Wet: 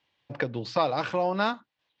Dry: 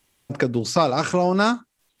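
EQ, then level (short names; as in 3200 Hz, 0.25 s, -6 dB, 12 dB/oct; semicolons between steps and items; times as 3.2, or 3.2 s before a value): speaker cabinet 140–3900 Hz, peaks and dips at 170 Hz -9 dB, 250 Hz -10 dB, 390 Hz -10 dB, 660 Hz -3 dB, 1300 Hz -7 dB, 2200 Hz -3 dB; -2.0 dB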